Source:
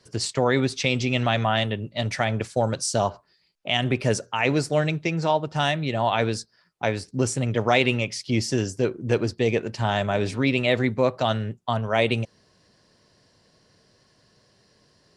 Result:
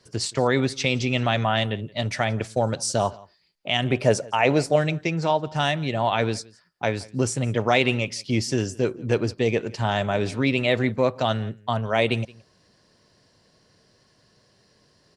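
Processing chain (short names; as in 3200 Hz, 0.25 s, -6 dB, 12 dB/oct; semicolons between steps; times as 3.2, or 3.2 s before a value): 3.92–4.76 bell 660 Hz +8 dB 0.95 oct; echo 0.172 s -23.5 dB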